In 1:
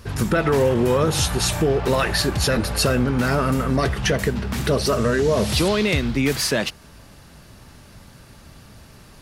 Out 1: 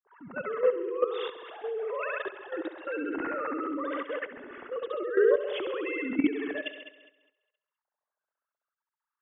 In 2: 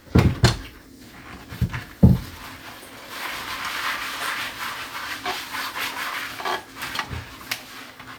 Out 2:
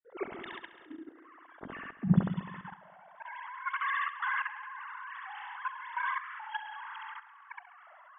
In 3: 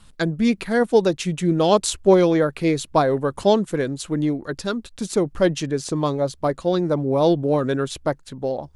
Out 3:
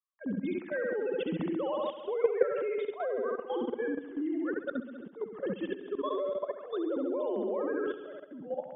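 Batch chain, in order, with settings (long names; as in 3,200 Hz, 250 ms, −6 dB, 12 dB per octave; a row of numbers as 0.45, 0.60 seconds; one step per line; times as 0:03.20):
three sine waves on the formant tracks
notch filter 2,400 Hz, Q 9.2
low-pass that shuts in the quiet parts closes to 890 Hz, open at −13 dBFS
in parallel at 0 dB: downward compressor 20 to 1, threshold −25 dBFS
on the sum: pitch vibrato 0.83 Hz 28 cents
noise gate with hold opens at −45 dBFS
dynamic equaliser 750 Hz, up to −3 dB, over −29 dBFS, Q 1.2
volume swells 115 ms
on a send: flutter between parallel walls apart 11.6 metres, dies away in 1.1 s
on the sum: output level in coarse steps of 12 dB
normalise the peak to −12 dBFS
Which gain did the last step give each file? −8.5, −7.5, −7.5 decibels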